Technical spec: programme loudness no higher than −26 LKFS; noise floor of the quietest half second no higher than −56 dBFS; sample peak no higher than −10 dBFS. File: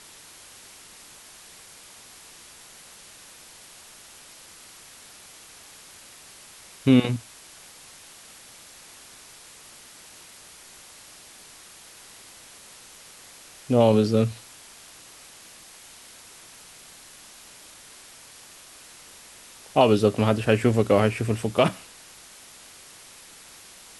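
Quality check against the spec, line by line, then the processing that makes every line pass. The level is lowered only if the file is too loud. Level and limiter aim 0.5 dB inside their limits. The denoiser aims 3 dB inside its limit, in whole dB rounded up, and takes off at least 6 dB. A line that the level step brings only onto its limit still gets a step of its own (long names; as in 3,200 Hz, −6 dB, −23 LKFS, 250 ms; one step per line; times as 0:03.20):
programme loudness −22.0 LKFS: out of spec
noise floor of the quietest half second −48 dBFS: out of spec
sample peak −6.0 dBFS: out of spec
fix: broadband denoise 7 dB, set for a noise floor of −48 dBFS
level −4.5 dB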